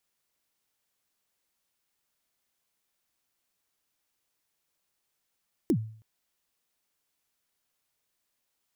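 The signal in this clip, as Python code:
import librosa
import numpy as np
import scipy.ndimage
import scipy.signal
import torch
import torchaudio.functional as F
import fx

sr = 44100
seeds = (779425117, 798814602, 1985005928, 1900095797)

y = fx.drum_kick(sr, seeds[0], length_s=0.32, level_db=-18.0, start_hz=380.0, end_hz=110.0, sweep_ms=74.0, decay_s=0.51, click=True)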